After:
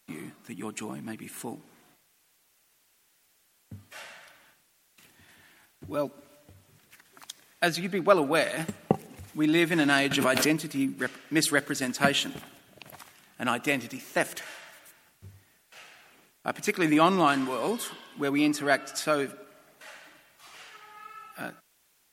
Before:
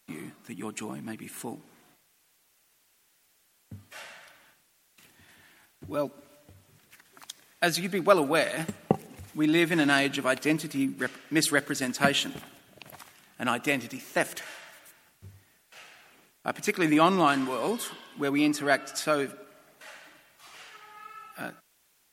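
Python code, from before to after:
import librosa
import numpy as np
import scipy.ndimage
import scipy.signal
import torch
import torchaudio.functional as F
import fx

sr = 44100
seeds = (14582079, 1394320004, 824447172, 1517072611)

y = fx.peak_eq(x, sr, hz=11000.0, db=-7.0, octaves=1.9, at=(7.68, 8.32))
y = fx.pre_swell(y, sr, db_per_s=28.0, at=(10.11, 10.61))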